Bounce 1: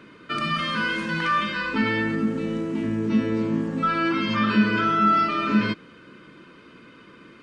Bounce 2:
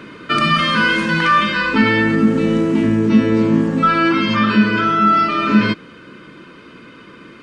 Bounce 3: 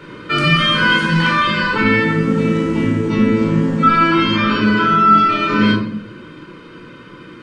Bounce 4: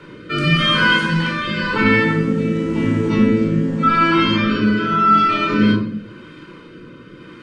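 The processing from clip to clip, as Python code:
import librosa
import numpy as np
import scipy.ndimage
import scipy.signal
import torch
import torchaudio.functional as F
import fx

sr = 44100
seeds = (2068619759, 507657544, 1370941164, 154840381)

y1 = fx.rider(x, sr, range_db=3, speed_s=0.5)
y1 = y1 * librosa.db_to_amplitude(8.5)
y2 = fx.room_shoebox(y1, sr, seeds[0], volume_m3=850.0, walls='furnished', distance_m=4.5)
y2 = y2 * librosa.db_to_amplitude(-4.5)
y3 = fx.rotary(y2, sr, hz=0.9)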